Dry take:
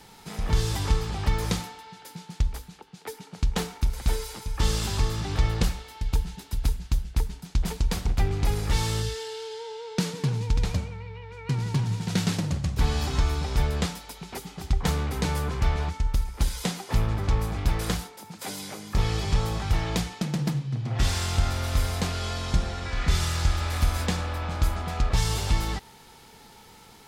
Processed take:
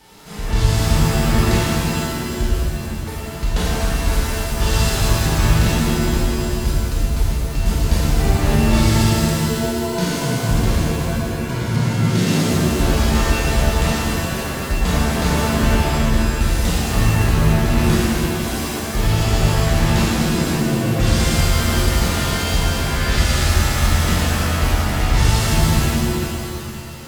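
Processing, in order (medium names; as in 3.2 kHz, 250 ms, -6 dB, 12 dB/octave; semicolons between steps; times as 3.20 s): pitch-shifted reverb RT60 2.3 s, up +7 st, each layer -2 dB, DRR -8 dB; trim -1 dB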